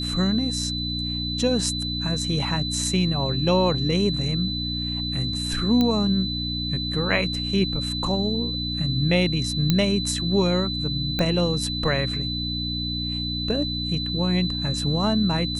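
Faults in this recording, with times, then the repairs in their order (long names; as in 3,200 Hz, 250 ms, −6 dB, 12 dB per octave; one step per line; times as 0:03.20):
mains hum 60 Hz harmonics 5 −30 dBFS
whistle 4,000 Hz −28 dBFS
0:05.81: click −10 dBFS
0:09.70: click −6 dBFS
0:11.19: click −13 dBFS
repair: click removal
hum removal 60 Hz, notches 5
notch filter 4,000 Hz, Q 30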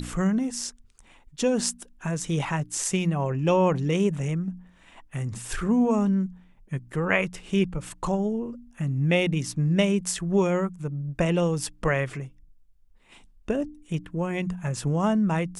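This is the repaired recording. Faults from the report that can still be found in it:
none of them is left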